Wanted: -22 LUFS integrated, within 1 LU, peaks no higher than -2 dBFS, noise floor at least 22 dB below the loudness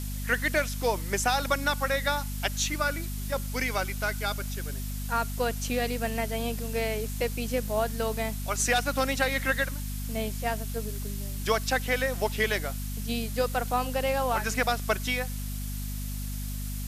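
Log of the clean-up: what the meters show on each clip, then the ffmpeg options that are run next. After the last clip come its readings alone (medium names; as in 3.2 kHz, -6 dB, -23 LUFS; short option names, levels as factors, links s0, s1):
hum 50 Hz; highest harmonic 250 Hz; hum level -31 dBFS; noise floor -34 dBFS; noise floor target -51 dBFS; loudness -29.0 LUFS; peak level -11.0 dBFS; loudness target -22.0 LUFS
-> -af "bandreject=f=50:t=h:w=4,bandreject=f=100:t=h:w=4,bandreject=f=150:t=h:w=4,bandreject=f=200:t=h:w=4,bandreject=f=250:t=h:w=4"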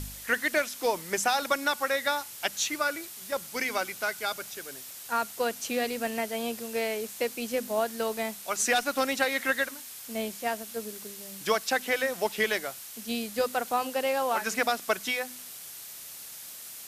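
hum not found; noise floor -44 dBFS; noise floor target -52 dBFS
-> -af "afftdn=nr=8:nf=-44"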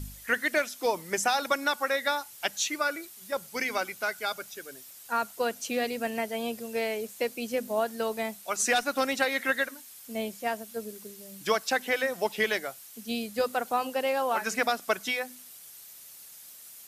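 noise floor -49 dBFS; noise floor target -52 dBFS
-> -af "afftdn=nr=6:nf=-49"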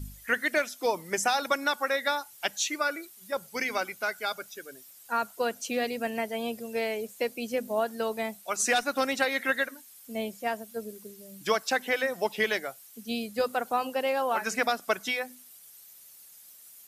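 noise floor -52 dBFS; loudness -29.5 LUFS; peak level -11.5 dBFS; loudness target -22.0 LUFS
-> -af "volume=2.37"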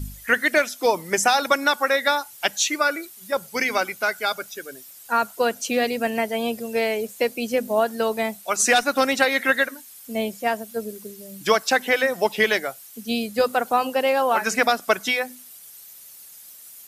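loudness -22.0 LUFS; peak level -4.0 dBFS; noise floor -45 dBFS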